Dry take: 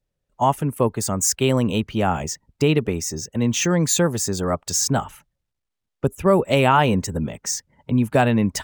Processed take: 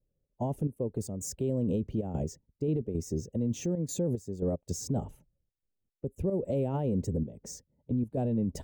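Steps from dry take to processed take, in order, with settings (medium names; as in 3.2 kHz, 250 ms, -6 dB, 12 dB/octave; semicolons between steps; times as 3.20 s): trance gate "xx.xx..x.xxxx" 112 bpm -12 dB; FFT filter 520 Hz 0 dB, 1.3 kHz -28 dB, 7.2 kHz -18 dB; peak limiter -22 dBFS, peak gain reduction 14.5 dB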